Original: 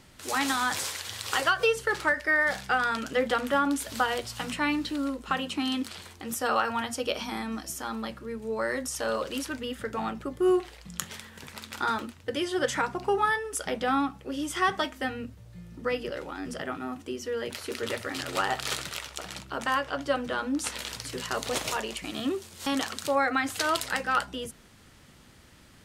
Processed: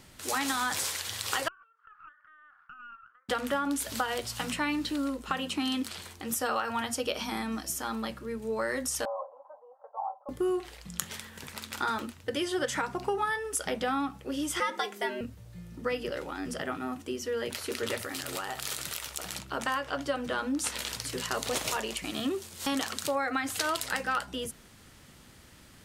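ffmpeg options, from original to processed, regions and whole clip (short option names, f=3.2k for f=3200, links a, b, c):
-filter_complex "[0:a]asettb=1/sr,asplit=3[a][b][c];[a]atrim=end=1.484[d];[b]atrim=start=1.48:end=3.29,asetpts=PTS-STARTPTS,afade=t=in:d=0.004:c=qsin,afade=t=out:st=1.806:d=0.004:c=qsin,acompressor=threshold=-37dB:ratio=16:attack=3.2:release=140:knee=1:detection=peak,asuperpass=centerf=1300:order=4:qfactor=4,aeval=exprs='(tanh(39.8*val(0)+0.65)-tanh(0.65))/39.8':c=same[e];[c]atrim=start=3.286[f];[d][e]acrossfade=d=0.004:c1=hsin:c2=qsin[g];[g][f]acrossfade=d=0.004:c1=qsin:c2=hsin,asettb=1/sr,asplit=3[h][i][j];[h]atrim=end=9.054[k];[i]atrim=start=9.05:end=10.29,asetpts=PTS-STARTPTS,afade=t=in:d=0.004:c=qsin,afade=t=out:st=1.236:d=0.004:c=qsin,asuperpass=centerf=780:order=8:qfactor=1.8,aecho=1:1:3.8:0.53,atrim=end_sample=54684[l];[j]atrim=start=10.286[m];[k][l]acrossfade=d=0.004:c1=hsin:c2=qsin[n];[n][m]acrossfade=d=0.004:c1=qsin:c2=hsin,asettb=1/sr,asplit=3[o][p][q];[o]atrim=end=14.604[r];[p]atrim=start=14.6:end=15.21,asetpts=PTS-STARTPTS,afade=t=in:d=0.004:c=qsin,afade=t=out:st=0.606:d=0.004:c=qsin,afreqshift=140,lowshelf=f=140:g=9[s];[q]atrim=start=15.206[t];[r][s]acrossfade=d=0.004:c1=hsin:c2=qsin[u];[u][t]acrossfade=d=0.004:c1=qsin:c2=hsin,asettb=1/sr,asplit=3[v][w][x];[v]atrim=end=17.994[y];[w]atrim=start=17.99:end=19.39,asetpts=PTS-STARTPTS,afade=t=in:d=0.004:c=qsin,afade=t=out:st=1.396:d=0.004:c=qsin,highshelf=f=9.4k:g=11,acompressor=threshold=-33dB:ratio=4:attack=3.2:release=140:knee=1:detection=peak[z];[x]atrim=start=19.386[aa];[y][z]acrossfade=d=0.004:c1=hsin:c2=qsin[ab];[ab][aa]acrossfade=d=0.004:c1=qsin:c2=hsin,highshelf=f=8.2k:g=5.5,acompressor=threshold=-26dB:ratio=6"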